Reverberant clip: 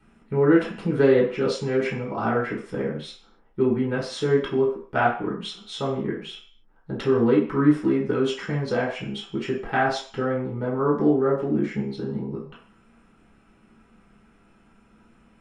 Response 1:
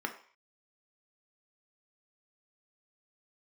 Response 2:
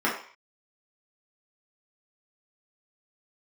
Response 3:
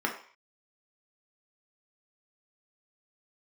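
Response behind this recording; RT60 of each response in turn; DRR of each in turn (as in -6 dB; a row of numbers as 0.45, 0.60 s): 2; 0.45, 0.45, 0.45 s; 4.0, -6.5, 0.0 dB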